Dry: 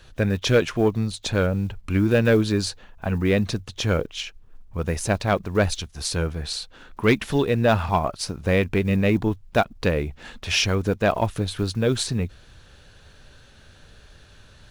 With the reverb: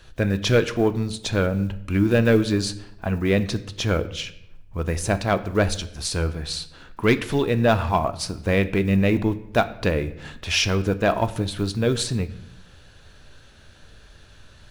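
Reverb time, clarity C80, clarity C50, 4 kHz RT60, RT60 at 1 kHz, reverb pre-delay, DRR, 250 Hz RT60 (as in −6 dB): 0.80 s, 18.0 dB, 16.0 dB, 0.60 s, 0.75 s, 3 ms, 11.0 dB, 1.0 s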